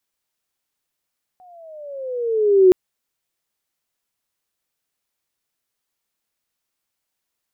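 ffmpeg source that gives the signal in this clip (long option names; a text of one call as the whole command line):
ffmpeg -f lavfi -i "aevalsrc='pow(10,(-6+38.5*(t/1.32-1))/20)*sin(2*PI*745*1.32/(-12.5*log(2)/12)*(exp(-12.5*log(2)/12*t/1.32)-1))':duration=1.32:sample_rate=44100" out.wav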